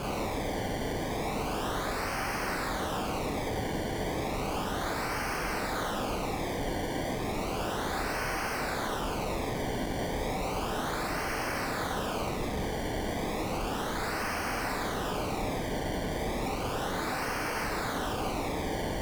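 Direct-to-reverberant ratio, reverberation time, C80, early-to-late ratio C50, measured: -1.0 dB, 0.50 s, 11.0 dB, 8.0 dB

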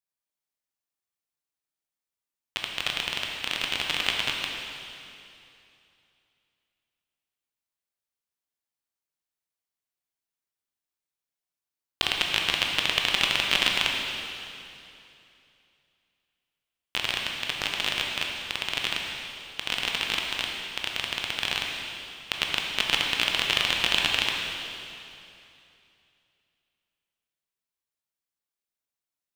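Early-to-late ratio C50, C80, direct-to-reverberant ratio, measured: 1.0 dB, 2.0 dB, -0.5 dB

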